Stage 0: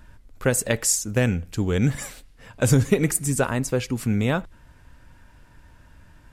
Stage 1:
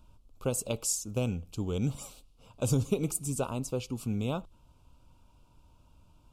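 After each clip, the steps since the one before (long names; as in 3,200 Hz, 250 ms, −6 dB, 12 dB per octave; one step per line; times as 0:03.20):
Chebyshev band-stop filter 1,200–2,700 Hz, order 2
level −8.5 dB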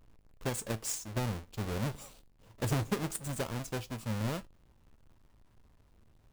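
each half-wave held at its own peak
tuned comb filter 110 Hz, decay 0.18 s, harmonics all, mix 50%
level −4.5 dB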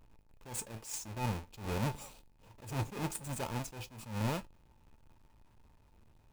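hollow resonant body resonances 890/2,500 Hz, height 10 dB
level that may rise only so fast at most 120 dB per second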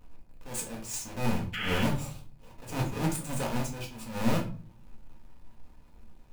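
sound drawn into the spectrogram noise, 0:01.53–0:01.83, 1,200–3,400 Hz −40 dBFS
rectangular room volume 280 cubic metres, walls furnished, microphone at 1.9 metres
level +3 dB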